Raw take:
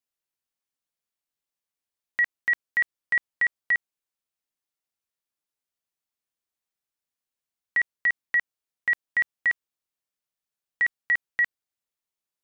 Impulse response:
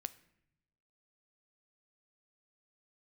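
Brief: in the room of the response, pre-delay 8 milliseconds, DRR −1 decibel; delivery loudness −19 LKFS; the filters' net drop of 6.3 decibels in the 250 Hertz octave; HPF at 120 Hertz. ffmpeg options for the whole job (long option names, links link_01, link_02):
-filter_complex "[0:a]highpass=120,equalizer=frequency=250:width_type=o:gain=-8.5,asplit=2[link_01][link_02];[1:a]atrim=start_sample=2205,adelay=8[link_03];[link_02][link_03]afir=irnorm=-1:irlink=0,volume=3.5dB[link_04];[link_01][link_04]amix=inputs=2:normalize=0,volume=6dB"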